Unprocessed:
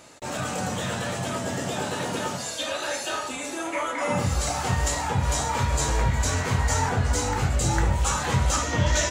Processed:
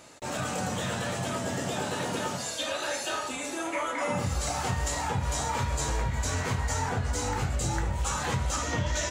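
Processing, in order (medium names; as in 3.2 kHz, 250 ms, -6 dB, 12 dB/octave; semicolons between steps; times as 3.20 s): compression, threshold -23 dBFS, peak gain reduction 6.5 dB; trim -2 dB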